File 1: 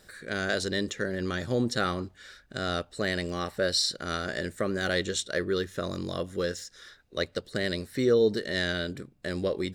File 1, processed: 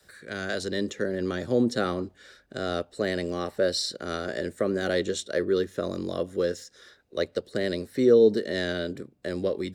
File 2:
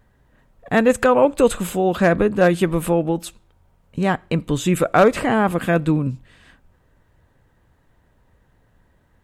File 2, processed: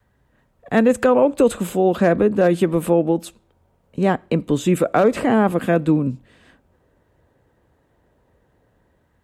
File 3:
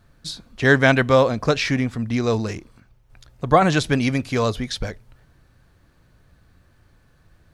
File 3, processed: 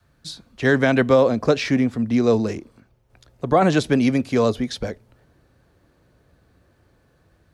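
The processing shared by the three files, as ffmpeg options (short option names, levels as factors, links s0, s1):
-filter_complex "[0:a]highpass=46,adynamicequalizer=threshold=0.0141:dfrequency=230:dqfactor=2.4:tfrequency=230:tqfactor=2.4:attack=5:release=100:ratio=0.375:range=2.5:mode=boostabove:tftype=bell,acrossover=split=340|600|2600[s0][s1][s2][s3];[s1]dynaudnorm=f=490:g=3:m=3.35[s4];[s0][s4][s2][s3]amix=inputs=4:normalize=0,alimiter=level_in=1.26:limit=0.891:release=50:level=0:latency=1,volume=0.562"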